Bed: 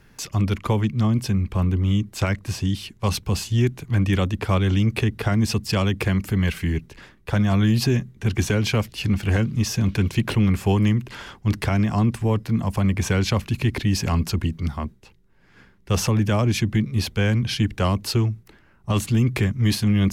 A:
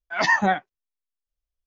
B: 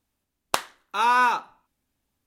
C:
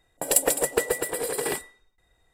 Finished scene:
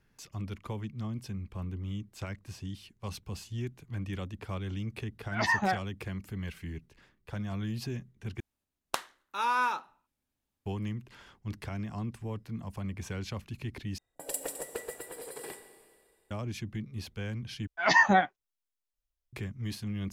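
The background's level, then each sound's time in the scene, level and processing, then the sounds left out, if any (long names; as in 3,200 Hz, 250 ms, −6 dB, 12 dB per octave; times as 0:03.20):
bed −16.5 dB
0:05.20: mix in A −8 dB + loose part that buzzes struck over −26 dBFS, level −26 dBFS
0:08.40: overwrite with B −8.5 dB
0:13.98: overwrite with C −15 dB + four-comb reverb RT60 2 s, combs from 29 ms, DRR 9.5 dB
0:17.67: overwrite with A −2 dB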